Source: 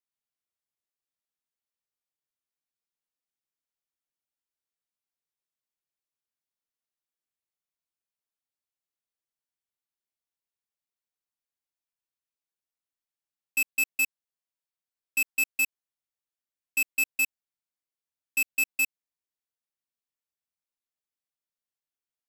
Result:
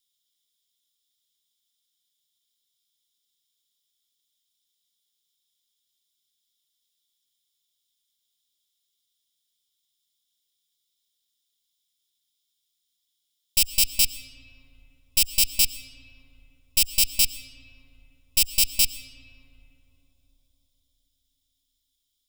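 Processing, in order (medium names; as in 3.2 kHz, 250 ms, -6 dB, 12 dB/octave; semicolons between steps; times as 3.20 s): comb filter that takes the minimum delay 0.57 ms; resonant high shelf 2.4 kHz +13 dB, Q 3; algorithmic reverb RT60 4.1 s, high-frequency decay 0.35×, pre-delay 70 ms, DRR 12.5 dB; trim +3 dB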